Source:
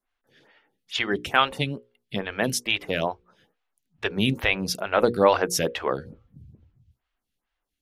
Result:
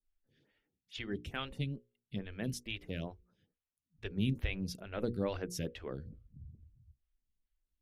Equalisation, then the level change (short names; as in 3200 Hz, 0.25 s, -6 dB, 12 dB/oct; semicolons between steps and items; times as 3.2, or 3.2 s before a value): passive tone stack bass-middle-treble 10-0-1; bell 130 Hz -2.5 dB 1.1 oct; high shelf 3600 Hz -7.5 dB; +9.0 dB